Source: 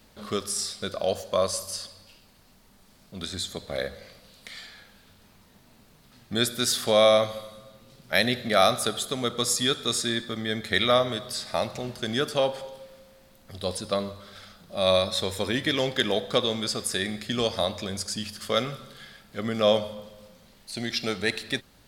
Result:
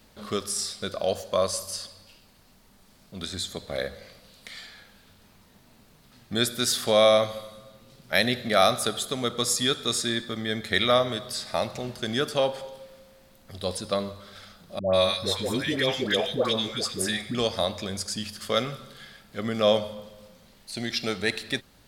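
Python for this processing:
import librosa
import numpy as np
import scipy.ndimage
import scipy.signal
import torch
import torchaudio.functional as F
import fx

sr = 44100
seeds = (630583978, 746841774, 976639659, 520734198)

y = fx.dispersion(x, sr, late='highs', ms=148.0, hz=820.0, at=(14.79, 17.35))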